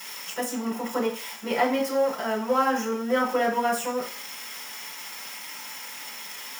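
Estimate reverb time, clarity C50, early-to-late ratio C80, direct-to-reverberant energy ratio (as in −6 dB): 0.45 s, 8.0 dB, 12.0 dB, −5.0 dB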